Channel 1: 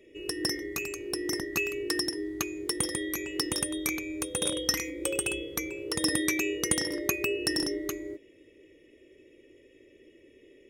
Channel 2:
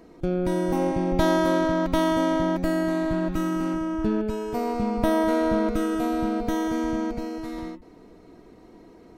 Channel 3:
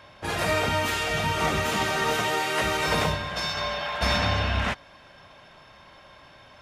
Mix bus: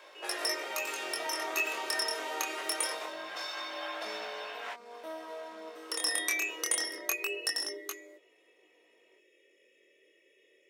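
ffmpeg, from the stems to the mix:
-filter_complex "[0:a]highpass=f=720:p=1,aeval=exprs='val(0)+0.000891*(sin(2*PI*50*n/s)+sin(2*PI*2*50*n/s)/2+sin(2*PI*3*50*n/s)/3+sin(2*PI*4*50*n/s)/4+sin(2*PI*5*50*n/s)/5)':c=same,volume=1.5dB,asplit=3[a][b][c];[a]atrim=end=2.92,asetpts=PTS-STARTPTS,afade=t=out:st=2.916:d=0.004:c=hsin[d];[b]atrim=start=2.92:end=5.89,asetpts=PTS-STARTPTS,volume=0[e];[c]atrim=start=5.89,asetpts=PTS-STARTPTS,afade=t=in:d=0.004:c=hsin[f];[d][e][f]concat=n=3:v=0:a=1[g];[1:a]volume=-15.5dB[h];[2:a]acompressor=threshold=-35dB:ratio=6,aeval=exprs='sgn(val(0))*max(abs(val(0))-0.00119,0)':c=same,volume=2.5dB[i];[g][h][i]amix=inputs=3:normalize=0,highpass=f=420:w=0.5412,highpass=f=420:w=1.3066,flanger=delay=18.5:depth=7.8:speed=0.24"

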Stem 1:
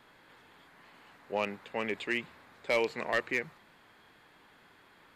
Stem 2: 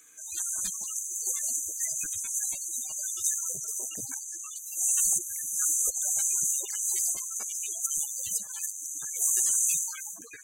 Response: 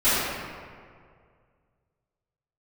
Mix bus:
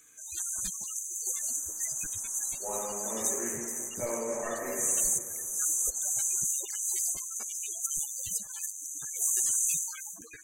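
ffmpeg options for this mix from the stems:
-filter_complex "[0:a]lowpass=f=1.5k:w=0.5412,lowpass=f=1.5k:w=1.3066,lowshelf=f=260:g=-9,adelay=1300,volume=-13.5dB,asplit=2[a][b];[b]volume=-7dB[c];[1:a]bandreject=f=319.2:t=h:w=4,bandreject=f=638.4:t=h:w=4,bandreject=f=957.6:t=h:w=4,volume=-2.5dB[d];[2:a]atrim=start_sample=2205[e];[c][e]afir=irnorm=-1:irlink=0[f];[a][d][f]amix=inputs=3:normalize=0,lowshelf=f=160:g=11.5"

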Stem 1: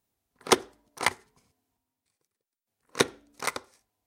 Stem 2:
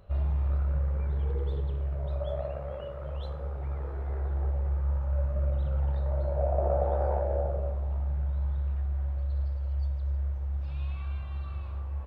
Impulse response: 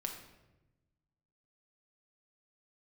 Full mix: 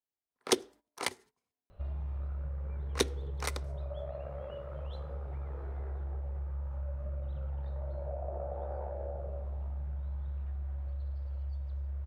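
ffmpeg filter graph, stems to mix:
-filter_complex "[0:a]agate=range=-17dB:threshold=-49dB:ratio=16:detection=peak,bass=f=250:g=-10,treble=f=4k:g=-5,acrossover=split=490|3000[a][b][c];[b]acompressor=threshold=-39dB:ratio=6[d];[a][d][c]amix=inputs=3:normalize=0,volume=-0.5dB[e];[1:a]acompressor=threshold=-32dB:ratio=4,adelay=1700,volume=-3.5dB[f];[e][f]amix=inputs=2:normalize=0"

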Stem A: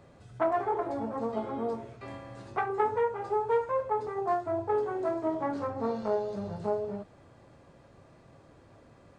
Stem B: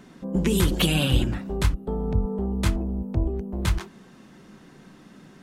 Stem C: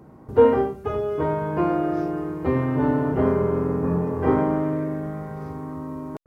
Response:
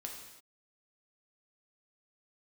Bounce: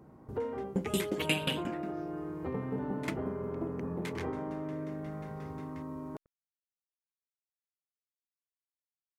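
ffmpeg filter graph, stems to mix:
-filter_complex "[1:a]highpass=f=190:w=0.5412,highpass=f=190:w=1.3066,equalizer=f=2.1k:w=2.4:g=11,aeval=exprs='val(0)*pow(10,-28*if(lt(mod(5.6*n/s,1),2*abs(5.6)/1000),1-mod(5.6*n/s,1)/(2*abs(5.6)/1000),(mod(5.6*n/s,1)-2*abs(5.6)/1000)/(1-2*abs(5.6)/1000))/20)':c=same,adelay=400,volume=-1.5dB,asplit=3[a][b][c];[a]atrim=end=1.93,asetpts=PTS-STARTPTS,afade=t=out:st=1.926:d=0.004:c=hsin[d];[b]atrim=start=1.93:end=2.48,asetpts=PTS-STARTPTS,volume=0[e];[c]atrim=start=2.48,asetpts=PTS-STARTPTS,afade=t=in:d=0.004:c=hsin[f];[d][e][f]concat=n=3:v=0:a=1[g];[2:a]acompressor=threshold=-27dB:ratio=4,volume=-8dB[h];[g][h]amix=inputs=2:normalize=0"

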